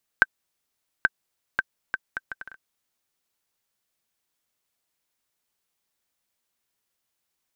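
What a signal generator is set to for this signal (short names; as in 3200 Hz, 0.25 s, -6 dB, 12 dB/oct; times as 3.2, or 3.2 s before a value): bouncing ball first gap 0.83 s, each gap 0.65, 1550 Hz, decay 34 ms -2 dBFS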